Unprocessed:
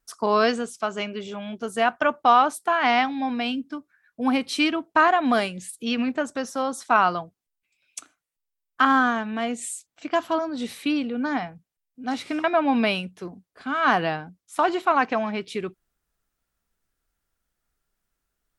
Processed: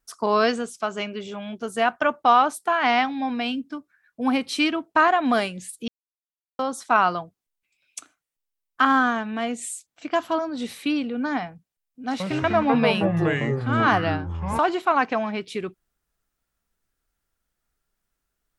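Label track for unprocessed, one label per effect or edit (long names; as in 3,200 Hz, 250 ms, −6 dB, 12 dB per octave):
5.880000	6.590000	silence
12.090000	14.590000	delay with pitch and tempo change per echo 109 ms, each echo −6 semitones, echoes 3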